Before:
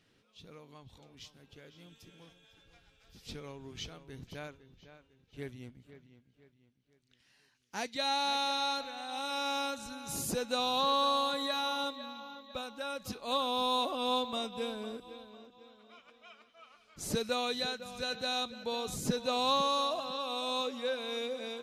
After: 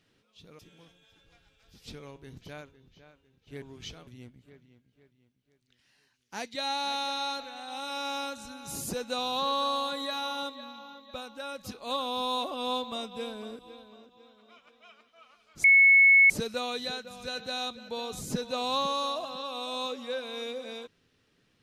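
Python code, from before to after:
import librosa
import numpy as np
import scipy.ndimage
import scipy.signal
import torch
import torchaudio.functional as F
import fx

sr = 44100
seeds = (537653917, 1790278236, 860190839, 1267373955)

y = fx.edit(x, sr, fx.cut(start_s=0.59, length_s=1.41),
    fx.move(start_s=3.57, length_s=0.45, to_s=5.48),
    fx.insert_tone(at_s=17.05, length_s=0.66, hz=2200.0, db=-14.5), tone=tone)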